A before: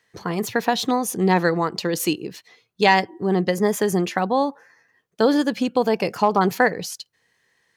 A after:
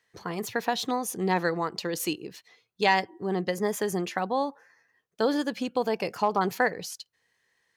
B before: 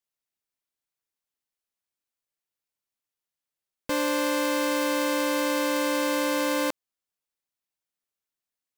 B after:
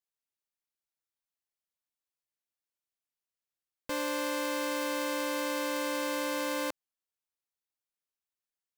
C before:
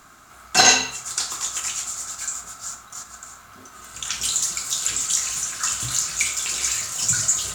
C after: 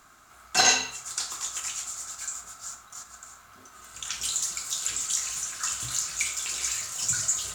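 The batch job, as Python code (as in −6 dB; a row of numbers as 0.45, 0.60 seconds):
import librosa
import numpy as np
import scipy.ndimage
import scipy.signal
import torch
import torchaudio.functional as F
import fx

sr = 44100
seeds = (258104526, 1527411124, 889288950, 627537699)

y = fx.peak_eq(x, sr, hz=180.0, db=-3.5, octaves=2.1)
y = y * 10.0 ** (-6.0 / 20.0)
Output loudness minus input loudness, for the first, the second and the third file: −7.0, −7.0, −6.0 LU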